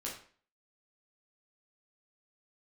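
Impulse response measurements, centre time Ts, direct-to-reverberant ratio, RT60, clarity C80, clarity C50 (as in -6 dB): 31 ms, -4.5 dB, 0.45 s, 10.0 dB, 6.0 dB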